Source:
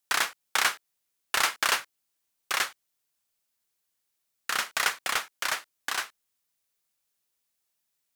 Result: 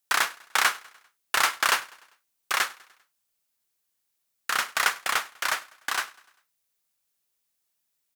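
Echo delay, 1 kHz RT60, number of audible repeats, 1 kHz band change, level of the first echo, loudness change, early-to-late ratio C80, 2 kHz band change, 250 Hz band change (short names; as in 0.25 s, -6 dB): 99 ms, none, 3, +3.5 dB, -23.0 dB, +2.0 dB, none, +2.5 dB, +0.5 dB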